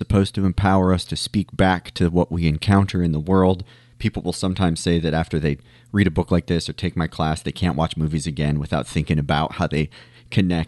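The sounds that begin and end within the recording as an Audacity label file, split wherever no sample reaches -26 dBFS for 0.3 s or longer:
4.010000	5.540000	sound
5.940000	9.860000	sound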